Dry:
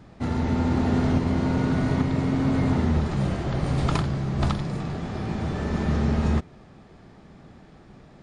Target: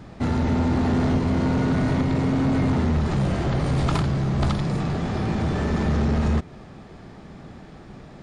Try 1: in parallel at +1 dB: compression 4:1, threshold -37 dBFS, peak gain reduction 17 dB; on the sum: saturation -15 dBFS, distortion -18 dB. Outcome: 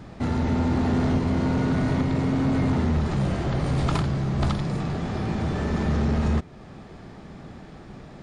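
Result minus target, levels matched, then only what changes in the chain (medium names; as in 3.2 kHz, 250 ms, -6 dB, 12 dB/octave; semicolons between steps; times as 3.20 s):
compression: peak gain reduction +8.5 dB
change: compression 4:1, threshold -25.5 dBFS, peak gain reduction 8 dB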